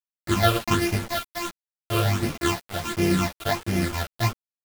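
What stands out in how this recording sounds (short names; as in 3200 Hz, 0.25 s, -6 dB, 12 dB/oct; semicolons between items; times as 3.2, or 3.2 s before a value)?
a buzz of ramps at a fixed pitch in blocks of 128 samples; phasing stages 8, 1.4 Hz, lowest notch 250–1200 Hz; a quantiser's noise floor 6-bit, dither none; a shimmering, thickened sound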